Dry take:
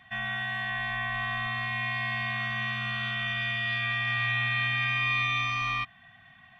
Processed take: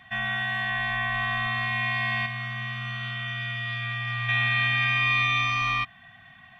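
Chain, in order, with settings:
0:02.26–0:04.29: tuned comb filter 120 Hz, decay 0.2 s, harmonics all, mix 70%
level +4 dB

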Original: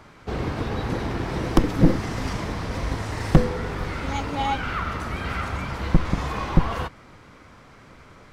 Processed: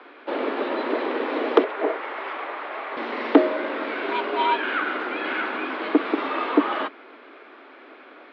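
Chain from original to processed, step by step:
single-sideband voice off tune +130 Hz 150–3,600 Hz
0:01.64–0:02.97: three-way crossover with the lows and the highs turned down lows −22 dB, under 540 Hz, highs −13 dB, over 2,800 Hz
level +3.5 dB

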